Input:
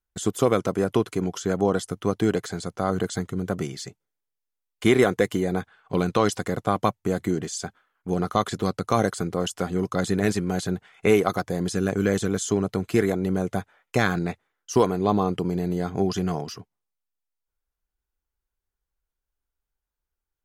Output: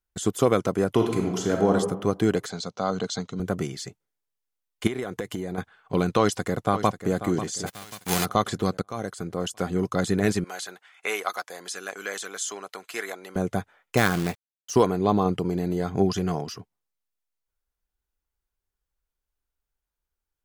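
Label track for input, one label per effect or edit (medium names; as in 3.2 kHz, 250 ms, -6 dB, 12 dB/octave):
0.930000	1.740000	reverb throw, RT60 1 s, DRR 2.5 dB
2.500000	3.400000	cabinet simulation 170–7000 Hz, peaks and dips at 340 Hz -10 dB, 1.8 kHz -8 dB, 4 kHz +8 dB, 5.9 kHz +5 dB
4.870000	5.580000	compression 10:1, threshold -26 dBFS
6.190000	7.150000	echo throw 540 ms, feedback 45%, level -12 dB
7.660000	8.240000	formants flattened exponent 0.3
8.820000	9.710000	fade in, from -18 dB
10.440000	13.360000	high-pass 930 Hz
13.970000	14.710000	companded quantiser 4-bit
15.250000	16.280000	phaser 1.3 Hz, delay 4 ms, feedback 23%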